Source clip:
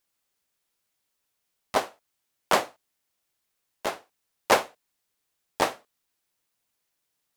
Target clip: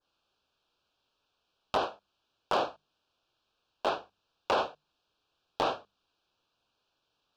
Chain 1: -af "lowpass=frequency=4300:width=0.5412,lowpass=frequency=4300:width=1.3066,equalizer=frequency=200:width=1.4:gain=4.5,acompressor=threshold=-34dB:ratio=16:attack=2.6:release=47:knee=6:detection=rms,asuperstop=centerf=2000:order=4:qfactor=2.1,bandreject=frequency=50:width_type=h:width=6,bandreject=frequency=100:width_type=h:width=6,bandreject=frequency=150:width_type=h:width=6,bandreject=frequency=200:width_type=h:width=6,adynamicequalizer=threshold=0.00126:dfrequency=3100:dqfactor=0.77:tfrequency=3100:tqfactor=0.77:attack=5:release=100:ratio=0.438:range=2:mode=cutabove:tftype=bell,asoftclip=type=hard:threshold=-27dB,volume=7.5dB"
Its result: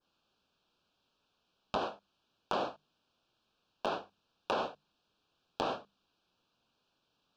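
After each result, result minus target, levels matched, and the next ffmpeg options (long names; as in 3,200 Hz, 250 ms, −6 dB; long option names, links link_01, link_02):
downward compressor: peak gain reduction +6.5 dB; 250 Hz band +4.0 dB
-af "lowpass=frequency=4300:width=0.5412,lowpass=frequency=4300:width=1.3066,equalizer=frequency=200:width=1.4:gain=4.5,acompressor=threshold=-27.5dB:ratio=16:attack=2.6:release=47:knee=6:detection=rms,asuperstop=centerf=2000:order=4:qfactor=2.1,bandreject=frequency=50:width_type=h:width=6,bandreject=frequency=100:width_type=h:width=6,bandreject=frequency=150:width_type=h:width=6,bandreject=frequency=200:width_type=h:width=6,adynamicequalizer=threshold=0.00126:dfrequency=3100:dqfactor=0.77:tfrequency=3100:tqfactor=0.77:attack=5:release=100:ratio=0.438:range=2:mode=cutabove:tftype=bell,asoftclip=type=hard:threshold=-27dB,volume=7.5dB"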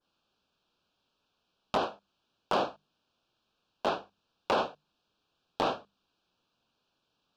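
250 Hz band +3.5 dB
-af "lowpass=frequency=4300:width=0.5412,lowpass=frequency=4300:width=1.3066,equalizer=frequency=200:width=1.4:gain=-4,acompressor=threshold=-27.5dB:ratio=16:attack=2.6:release=47:knee=6:detection=rms,asuperstop=centerf=2000:order=4:qfactor=2.1,bandreject=frequency=50:width_type=h:width=6,bandreject=frequency=100:width_type=h:width=6,bandreject=frequency=150:width_type=h:width=6,bandreject=frequency=200:width_type=h:width=6,adynamicequalizer=threshold=0.00126:dfrequency=3100:dqfactor=0.77:tfrequency=3100:tqfactor=0.77:attack=5:release=100:ratio=0.438:range=2:mode=cutabove:tftype=bell,asoftclip=type=hard:threshold=-27dB,volume=7.5dB"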